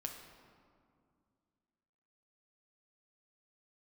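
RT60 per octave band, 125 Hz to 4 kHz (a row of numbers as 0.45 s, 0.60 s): 2.8 s, 2.9 s, 2.3 s, 2.2 s, 1.6 s, 1.2 s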